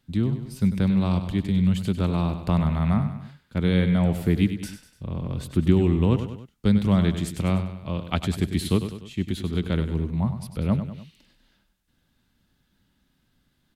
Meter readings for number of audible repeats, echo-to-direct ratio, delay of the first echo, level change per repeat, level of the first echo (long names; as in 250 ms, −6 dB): 3, −9.0 dB, 98 ms, −6.0 dB, −10.0 dB